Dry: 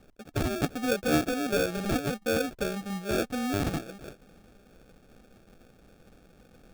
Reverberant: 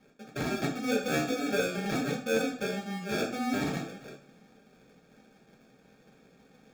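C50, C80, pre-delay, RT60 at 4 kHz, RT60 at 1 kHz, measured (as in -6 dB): 8.0 dB, 12.5 dB, 3 ms, 0.40 s, 0.45 s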